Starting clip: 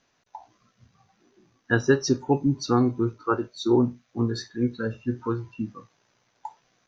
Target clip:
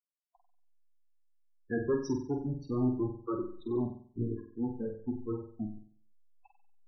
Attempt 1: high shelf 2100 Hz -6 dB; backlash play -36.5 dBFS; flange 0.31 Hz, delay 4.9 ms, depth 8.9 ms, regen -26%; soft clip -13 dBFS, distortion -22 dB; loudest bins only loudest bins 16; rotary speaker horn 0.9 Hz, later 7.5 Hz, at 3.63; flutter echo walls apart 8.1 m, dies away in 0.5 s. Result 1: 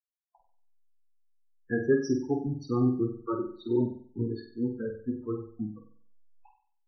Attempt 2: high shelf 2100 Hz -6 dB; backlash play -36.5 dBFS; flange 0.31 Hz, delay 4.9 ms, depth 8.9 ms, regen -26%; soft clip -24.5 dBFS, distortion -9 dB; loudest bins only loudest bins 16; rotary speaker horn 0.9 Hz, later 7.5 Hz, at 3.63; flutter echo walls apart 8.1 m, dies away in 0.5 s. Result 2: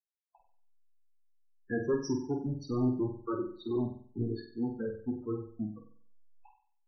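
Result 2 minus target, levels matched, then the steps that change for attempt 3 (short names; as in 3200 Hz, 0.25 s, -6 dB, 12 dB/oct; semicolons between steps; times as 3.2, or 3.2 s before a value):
backlash: distortion -8 dB
change: backlash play -27.5 dBFS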